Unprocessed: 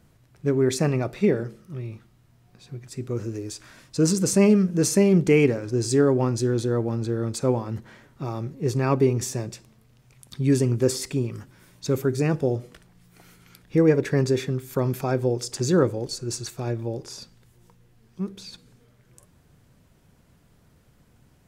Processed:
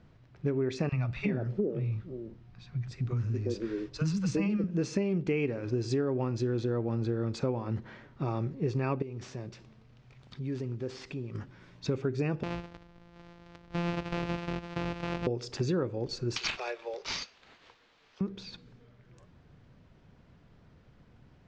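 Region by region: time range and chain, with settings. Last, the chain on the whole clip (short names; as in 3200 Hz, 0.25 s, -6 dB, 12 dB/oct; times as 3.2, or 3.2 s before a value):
0.89–4.64 low shelf 160 Hz +8.5 dB + three bands offset in time highs, lows, mids 30/360 ms, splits 220/710 Hz
9.02–11.35 CVSD 64 kbps + compressor 2:1, threshold -44 dBFS
12.43–15.27 sample sorter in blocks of 256 samples + compressor 2.5:1, threshold -34 dBFS
16.36–18.21 steep high-pass 390 Hz 72 dB/oct + tilt +4 dB/oct + careless resampling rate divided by 4×, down none, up hold
whole clip: Bessel low-pass 3600 Hz, order 6; dynamic EQ 2600 Hz, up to +6 dB, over -57 dBFS, Q 5.5; compressor 6:1, threshold -27 dBFS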